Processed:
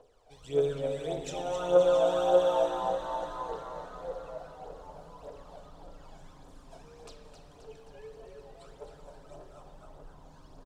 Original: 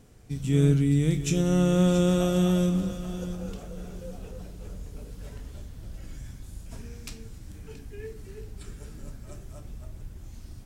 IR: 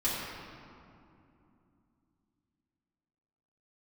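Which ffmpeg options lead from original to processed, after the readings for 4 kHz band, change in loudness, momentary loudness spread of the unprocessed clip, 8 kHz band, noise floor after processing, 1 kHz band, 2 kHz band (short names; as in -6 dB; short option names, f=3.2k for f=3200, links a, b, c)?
-4.5 dB, -4.5 dB, 22 LU, -11.0 dB, -55 dBFS, +7.5 dB, -5.0 dB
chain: -filter_complex "[0:a]acrossover=split=400 4100:gain=0.112 1 0.126[a][b][c];[a][b][c]amix=inputs=3:normalize=0,aphaser=in_gain=1:out_gain=1:delay=1.4:decay=0.73:speed=1.7:type=triangular,equalizer=f=125:t=o:w=1:g=-4,equalizer=f=250:t=o:w=1:g=-11,equalizer=f=500:t=o:w=1:g=11,equalizer=f=1k:t=o:w=1:g=4,equalizer=f=2k:t=o:w=1:g=-11,equalizer=f=4k:t=o:w=1:g=3,equalizer=f=8k:t=o:w=1:g=6,asplit=9[d][e][f][g][h][i][j][k][l];[e]adelay=264,afreqshift=120,volume=-7.5dB[m];[f]adelay=528,afreqshift=240,volume=-11.9dB[n];[g]adelay=792,afreqshift=360,volume=-16.4dB[o];[h]adelay=1056,afreqshift=480,volume=-20.8dB[p];[i]adelay=1320,afreqshift=600,volume=-25.2dB[q];[j]adelay=1584,afreqshift=720,volume=-29.7dB[r];[k]adelay=1848,afreqshift=840,volume=-34.1dB[s];[l]adelay=2112,afreqshift=960,volume=-38.6dB[t];[d][m][n][o][p][q][r][s][t]amix=inputs=9:normalize=0,asplit=2[u][v];[1:a]atrim=start_sample=2205,lowpass=4.3k[w];[v][w]afir=irnorm=-1:irlink=0,volume=-12dB[x];[u][x]amix=inputs=2:normalize=0,volume=-7dB"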